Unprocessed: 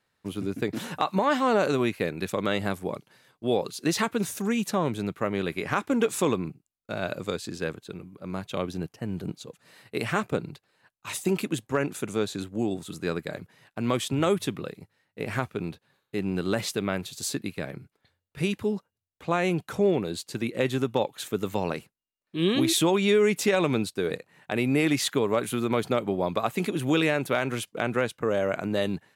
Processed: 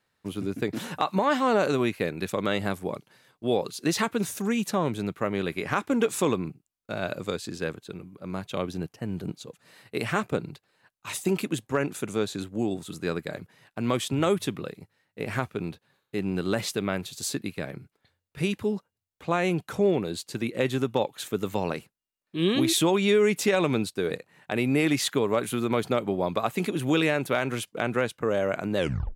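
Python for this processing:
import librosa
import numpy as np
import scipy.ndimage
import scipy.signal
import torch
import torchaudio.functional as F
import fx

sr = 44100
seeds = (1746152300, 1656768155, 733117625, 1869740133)

y = fx.tape_stop_end(x, sr, length_s=0.38)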